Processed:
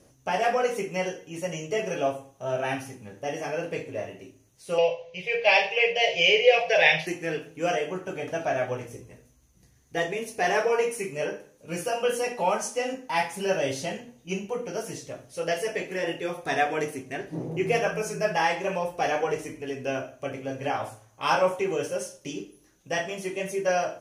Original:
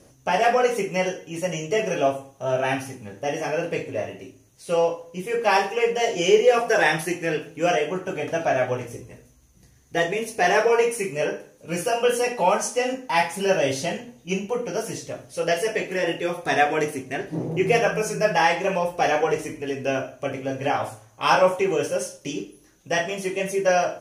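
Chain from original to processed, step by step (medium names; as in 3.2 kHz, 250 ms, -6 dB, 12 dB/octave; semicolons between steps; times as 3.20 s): 4.78–7.07 s: FFT filter 160 Hz 0 dB, 270 Hz -22 dB, 560 Hz +8 dB, 1.3 kHz -10 dB, 2.3 kHz +14 dB, 4.8 kHz +6 dB, 8.9 kHz -19 dB; trim -5 dB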